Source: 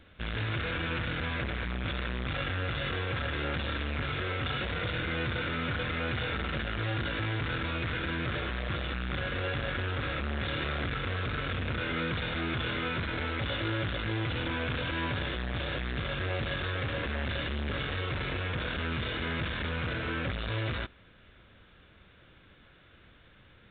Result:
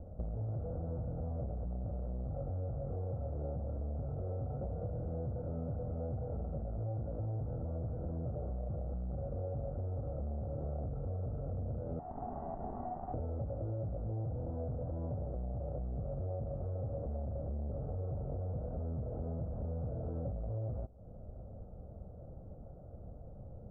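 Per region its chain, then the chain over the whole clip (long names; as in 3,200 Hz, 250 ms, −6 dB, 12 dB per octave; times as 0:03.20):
0:11.99–0:13.14: voice inversion scrambler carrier 3,200 Hz + parametric band 510 Hz −14.5 dB 0.32 octaves
whole clip: Butterworth low-pass 760 Hz 36 dB per octave; comb filter 1.5 ms, depth 55%; downward compressor 5 to 1, threshold −46 dBFS; level +8.5 dB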